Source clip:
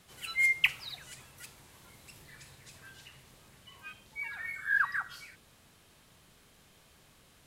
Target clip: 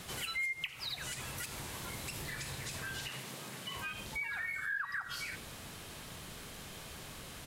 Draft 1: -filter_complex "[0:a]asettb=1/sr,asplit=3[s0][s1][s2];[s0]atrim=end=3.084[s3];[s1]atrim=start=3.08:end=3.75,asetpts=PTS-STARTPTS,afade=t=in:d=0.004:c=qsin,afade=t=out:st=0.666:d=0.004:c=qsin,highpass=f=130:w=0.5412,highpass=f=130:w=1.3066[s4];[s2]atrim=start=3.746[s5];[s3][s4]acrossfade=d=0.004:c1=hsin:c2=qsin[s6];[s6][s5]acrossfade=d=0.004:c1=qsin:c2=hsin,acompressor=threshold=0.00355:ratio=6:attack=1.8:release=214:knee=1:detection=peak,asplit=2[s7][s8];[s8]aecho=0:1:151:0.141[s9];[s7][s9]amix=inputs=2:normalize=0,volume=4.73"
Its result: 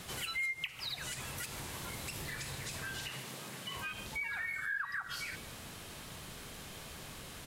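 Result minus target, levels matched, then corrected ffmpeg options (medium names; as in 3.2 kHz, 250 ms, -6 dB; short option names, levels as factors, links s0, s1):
echo 64 ms late
-filter_complex "[0:a]asettb=1/sr,asplit=3[s0][s1][s2];[s0]atrim=end=3.084[s3];[s1]atrim=start=3.08:end=3.75,asetpts=PTS-STARTPTS,afade=t=in:d=0.004:c=qsin,afade=t=out:st=0.666:d=0.004:c=qsin,highpass=f=130:w=0.5412,highpass=f=130:w=1.3066[s4];[s2]atrim=start=3.746[s5];[s3][s4]acrossfade=d=0.004:c1=hsin:c2=qsin[s6];[s6][s5]acrossfade=d=0.004:c1=qsin:c2=hsin,acompressor=threshold=0.00355:ratio=6:attack=1.8:release=214:knee=1:detection=peak,asplit=2[s7][s8];[s8]aecho=0:1:87:0.141[s9];[s7][s9]amix=inputs=2:normalize=0,volume=4.73"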